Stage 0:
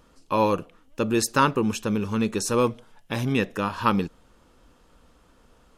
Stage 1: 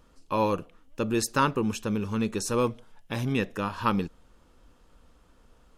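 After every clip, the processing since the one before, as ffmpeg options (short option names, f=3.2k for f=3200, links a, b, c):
-af "lowshelf=f=70:g=6.5,volume=-4dB"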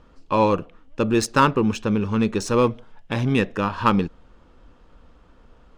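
-af "adynamicsmooth=sensitivity=3.5:basefreq=4.3k,volume=7dB"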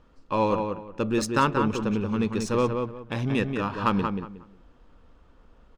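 -filter_complex "[0:a]asplit=2[a][b];[b]adelay=182,lowpass=f=2.5k:p=1,volume=-5dB,asplit=2[c][d];[d]adelay=182,lowpass=f=2.5k:p=1,volume=0.25,asplit=2[e][f];[f]adelay=182,lowpass=f=2.5k:p=1,volume=0.25[g];[a][c][e][g]amix=inputs=4:normalize=0,volume=-5.5dB"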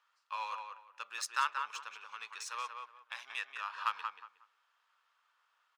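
-af "highpass=f=1.1k:w=0.5412,highpass=f=1.1k:w=1.3066,volume=-6dB"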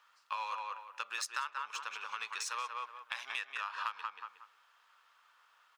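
-af "acompressor=threshold=-44dB:ratio=5,volume=8.5dB"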